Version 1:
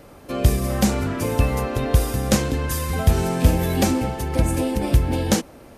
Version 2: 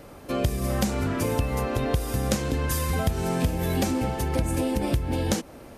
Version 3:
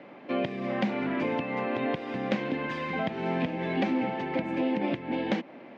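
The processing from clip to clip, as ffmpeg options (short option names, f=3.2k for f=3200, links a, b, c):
-af "acompressor=threshold=-21dB:ratio=6"
-af "highpass=f=190:w=0.5412,highpass=f=190:w=1.3066,equalizer=f=450:t=q:w=4:g=-5,equalizer=f=1.3k:t=q:w=4:g=-6,equalizer=f=2.1k:t=q:w=4:g=5,lowpass=f=3.1k:w=0.5412,lowpass=f=3.1k:w=1.3066"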